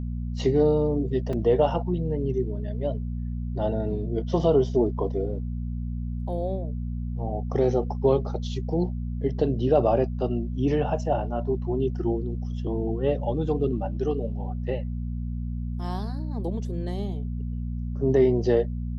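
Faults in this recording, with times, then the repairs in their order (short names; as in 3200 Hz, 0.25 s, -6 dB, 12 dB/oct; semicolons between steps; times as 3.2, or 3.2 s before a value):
hum 60 Hz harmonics 4 -30 dBFS
1.33 gap 3.9 ms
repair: de-hum 60 Hz, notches 4; interpolate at 1.33, 3.9 ms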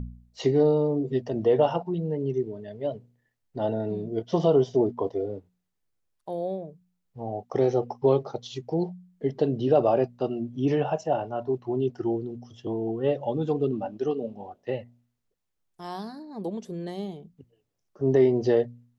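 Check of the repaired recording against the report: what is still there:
none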